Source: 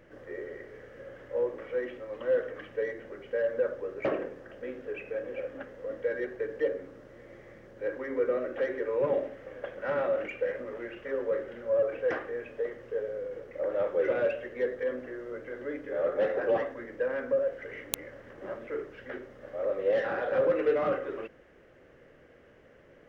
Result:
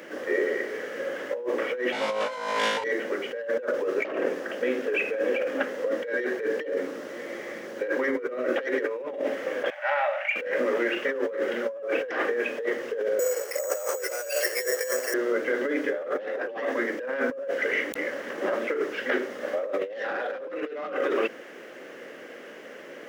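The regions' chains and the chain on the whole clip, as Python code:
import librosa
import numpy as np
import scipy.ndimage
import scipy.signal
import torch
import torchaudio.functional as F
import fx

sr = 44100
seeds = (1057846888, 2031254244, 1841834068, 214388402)

y = fx.chain(x, sr, fx.lower_of_two(delay_ms=1.4),
    fx.lowpass(hz=9500.0, slope=12),
    fx.room_flutter(wall_m=3.2, rt60_s=0.96), at=(1.92, 2.84))
y = fx.chain(y, sr, fx.cheby_ripple_highpass(hz=580.0, ripple_db=9),
    fx.high_shelf(hz=2800.0, db=-8.0), at=(9.7, 10.36))
y = fx.chain(y, sr, fx.highpass(hz=480.0, slope=24),
    fx.resample_bad(factor=6, down='filtered', up='hold'), at=(13.19, 15.14))
y = scipy.signal.sosfilt(scipy.signal.butter(4, 220.0, 'highpass', fs=sr, output='sos'), y)
y = fx.high_shelf(y, sr, hz=2400.0, db=9.5)
y = fx.over_compress(y, sr, threshold_db=-37.0, ratio=-1.0)
y = y * librosa.db_to_amplitude(8.5)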